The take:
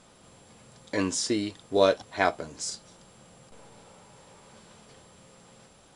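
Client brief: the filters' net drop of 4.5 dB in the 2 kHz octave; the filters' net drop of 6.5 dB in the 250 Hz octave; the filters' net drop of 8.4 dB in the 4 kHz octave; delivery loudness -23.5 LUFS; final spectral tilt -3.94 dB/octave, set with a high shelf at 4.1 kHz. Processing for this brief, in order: peaking EQ 250 Hz -9 dB; peaking EQ 2 kHz -3.5 dB; peaking EQ 4 kHz -6 dB; treble shelf 4.1 kHz -6 dB; trim +7.5 dB

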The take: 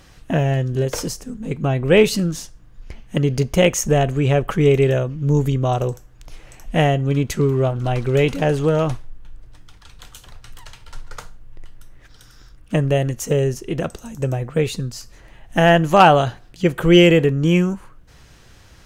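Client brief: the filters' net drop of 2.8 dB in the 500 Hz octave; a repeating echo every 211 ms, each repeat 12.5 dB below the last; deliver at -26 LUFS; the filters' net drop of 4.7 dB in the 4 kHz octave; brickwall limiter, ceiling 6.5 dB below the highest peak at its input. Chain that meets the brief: peaking EQ 500 Hz -3.5 dB; peaking EQ 4 kHz -7.5 dB; peak limiter -9.5 dBFS; feedback delay 211 ms, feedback 24%, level -12.5 dB; trim -5 dB

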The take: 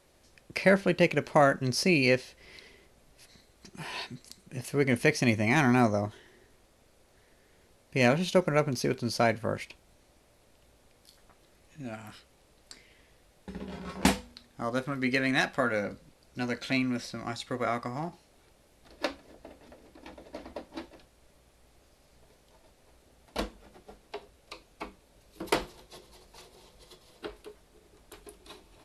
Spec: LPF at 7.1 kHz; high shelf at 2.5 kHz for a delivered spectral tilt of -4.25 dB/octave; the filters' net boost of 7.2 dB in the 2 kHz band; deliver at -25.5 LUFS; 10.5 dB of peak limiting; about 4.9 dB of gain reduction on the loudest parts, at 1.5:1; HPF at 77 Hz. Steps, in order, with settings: high-pass 77 Hz; low-pass 7.1 kHz; peaking EQ 2 kHz +7 dB; treble shelf 2.5 kHz +3.5 dB; compression 1.5:1, threshold -28 dBFS; trim +8 dB; peak limiter -10 dBFS

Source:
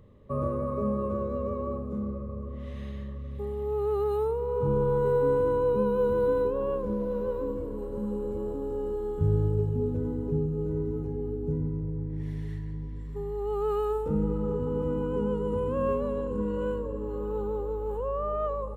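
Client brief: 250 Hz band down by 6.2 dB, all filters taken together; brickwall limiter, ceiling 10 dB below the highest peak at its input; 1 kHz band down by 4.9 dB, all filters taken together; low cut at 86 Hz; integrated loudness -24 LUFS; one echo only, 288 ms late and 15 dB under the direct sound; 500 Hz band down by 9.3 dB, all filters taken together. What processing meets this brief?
high-pass 86 Hz; peaking EQ 250 Hz -6.5 dB; peaking EQ 500 Hz -8 dB; peaking EQ 1 kHz -3.5 dB; peak limiter -29.5 dBFS; delay 288 ms -15 dB; trim +14.5 dB

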